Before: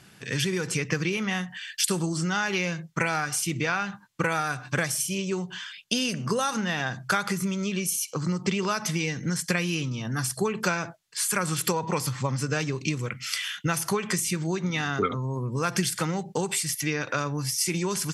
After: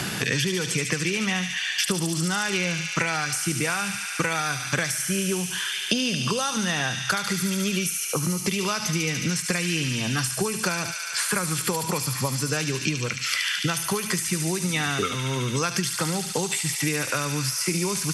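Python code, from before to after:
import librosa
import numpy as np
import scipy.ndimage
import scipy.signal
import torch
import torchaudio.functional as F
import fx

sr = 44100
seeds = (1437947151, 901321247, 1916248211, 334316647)

p1 = x + fx.echo_wet_highpass(x, sr, ms=72, feedback_pct=79, hz=2700.0, wet_db=-3.5, dry=0)
y = fx.band_squash(p1, sr, depth_pct=100)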